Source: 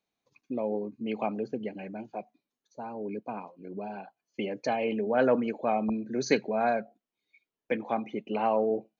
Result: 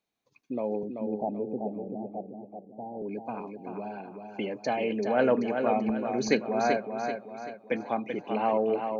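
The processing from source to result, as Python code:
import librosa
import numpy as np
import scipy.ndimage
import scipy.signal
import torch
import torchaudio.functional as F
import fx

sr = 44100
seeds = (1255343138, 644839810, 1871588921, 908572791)

y = fx.steep_lowpass(x, sr, hz=860.0, slope=96, at=(0.83, 3.02))
y = fx.echo_feedback(y, sr, ms=385, feedback_pct=42, wet_db=-6)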